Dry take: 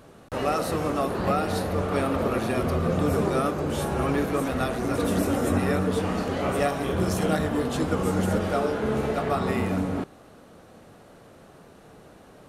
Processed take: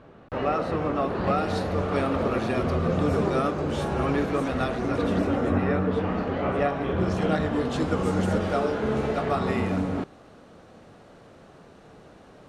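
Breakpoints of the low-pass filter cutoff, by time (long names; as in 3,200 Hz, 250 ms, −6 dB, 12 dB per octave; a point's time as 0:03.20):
0:00.92 2,700 Hz
0:01.50 5,700 Hz
0:04.59 5,700 Hz
0:05.58 2,500 Hz
0:06.78 2,500 Hz
0:07.86 6,600 Hz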